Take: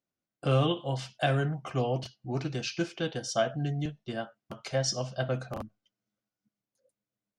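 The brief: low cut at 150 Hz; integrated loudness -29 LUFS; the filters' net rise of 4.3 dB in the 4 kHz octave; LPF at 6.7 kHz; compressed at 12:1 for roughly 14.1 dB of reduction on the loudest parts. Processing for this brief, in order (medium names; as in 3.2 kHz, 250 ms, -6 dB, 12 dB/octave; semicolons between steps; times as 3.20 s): high-pass 150 Hz; low-pass 6.7 kHz; peaking EQ 4 kHz +7 dB; compression 12:1, threshold -36 dBFS; trim +12 dB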